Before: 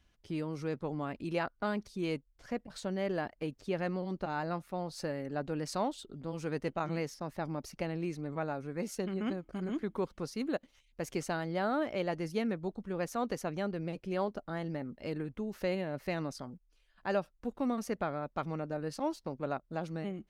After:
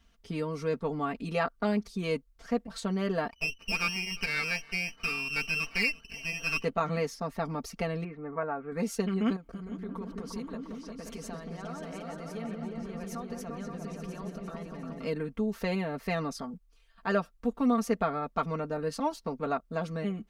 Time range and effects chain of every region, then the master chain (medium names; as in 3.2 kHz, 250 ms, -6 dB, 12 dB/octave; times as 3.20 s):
3.31–6.64 s: frequency inversion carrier 3 kHz + delay 347 ms -23.5 dB + sliding maximum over 5 samples
8.04–8.72 s: low-pass 2 kHz 24 dB/octave + bass shelf 290 Hz -8.5 dB
9.36–15.05 s: compression, threshold -44 dBFS + delay with an opening low-pass 176 ms, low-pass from 400 Hz, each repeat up 2 oct, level 0 dB
whole clip: peaking EQ 1.2 kHz +6 dB 0.21 oct; comb 4.4 ms, depth 86%; trim +2.5 dB